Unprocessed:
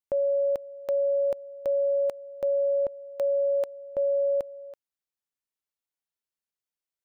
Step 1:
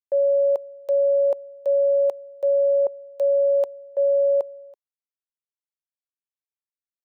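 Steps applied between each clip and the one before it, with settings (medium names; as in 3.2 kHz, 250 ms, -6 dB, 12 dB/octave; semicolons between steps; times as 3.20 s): high-pass 260 Hz; high-order bell 670 Hz +11 dB; three bands expanded up and down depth 70%; trim -5 dB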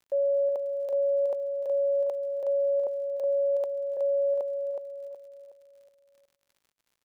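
crackle 48 per s -45 dBFS; on a send: feedback delay 369 ms, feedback 39%, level -5.5 dB; on the sum: trim -6 dB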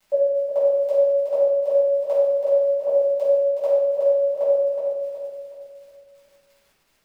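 simulated room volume 560 m³, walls mixed, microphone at 7.3 m; trim -1.5 dB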